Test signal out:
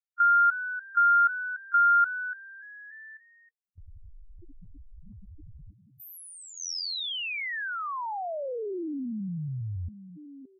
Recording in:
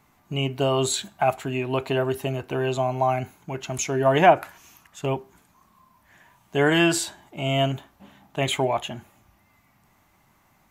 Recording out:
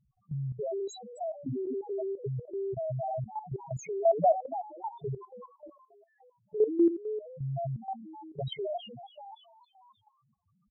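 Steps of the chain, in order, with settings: frequency-shifting echo 288 ms, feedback 49%, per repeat +91 Hz, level -11.5 dB; loudest bins only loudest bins 1; level held to a coarse grid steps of 13 dB; trim +6 dB

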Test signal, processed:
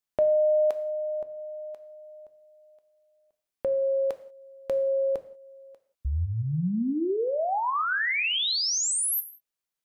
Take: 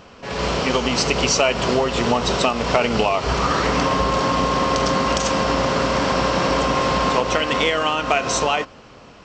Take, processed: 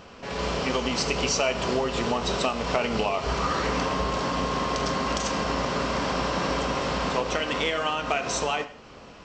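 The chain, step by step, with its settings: in parallel at +0.5 dB: compression, threshold -34 dBFS; on the sum: gated-style reverb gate 210 ms falling, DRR 9.5 dB; trim -8.5 dB

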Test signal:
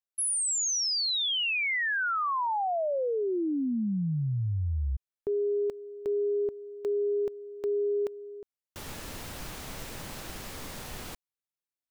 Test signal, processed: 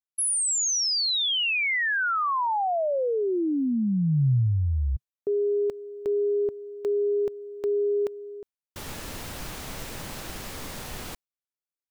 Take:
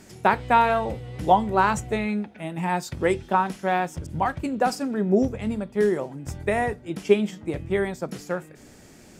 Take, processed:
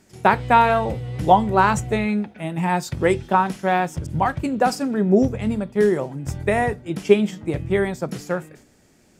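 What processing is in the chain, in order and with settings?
gate with hold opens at -35 dBFS, closes at -42 dBFS, hold 26 ms, range -11 dB; dynamic bell 130 Hz, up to +5 dB, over -44 dBFS, Q 2.1; trim +3.5 dB

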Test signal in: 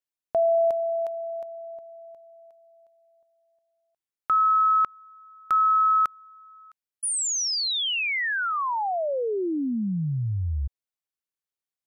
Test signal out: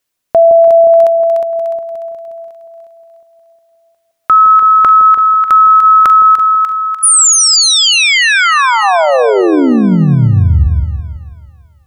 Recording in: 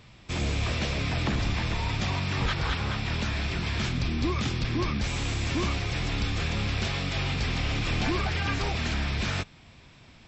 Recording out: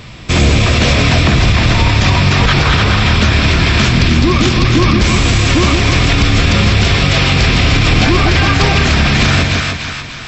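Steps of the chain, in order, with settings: band-stop 850 Hz, Q 12; on a send: two-band feedback delay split 870 Hz, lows 164 ms, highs 296 ms, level -5 dB; on the sum: loudness maximiser +20.5 dB; trim -1 dB

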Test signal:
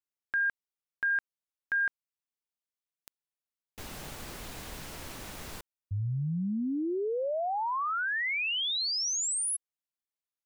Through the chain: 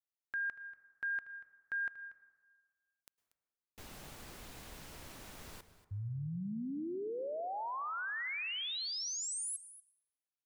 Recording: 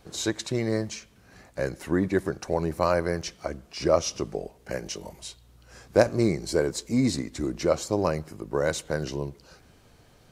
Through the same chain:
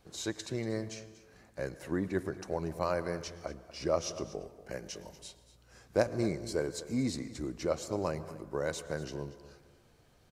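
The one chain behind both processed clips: delay 237 ms -16.5 dB; plate-style reverb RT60 1.6 s, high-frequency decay 0.4×, pre-delay 95 ms, DRR 15.5 dB; trim -8.5 dB

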